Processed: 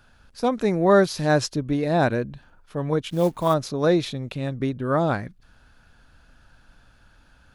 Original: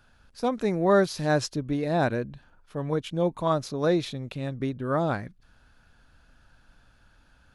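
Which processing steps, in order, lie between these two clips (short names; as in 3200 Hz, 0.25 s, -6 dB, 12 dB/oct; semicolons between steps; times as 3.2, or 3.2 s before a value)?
3.1–3.54 companded quantiser 6-bit; gain +4 dB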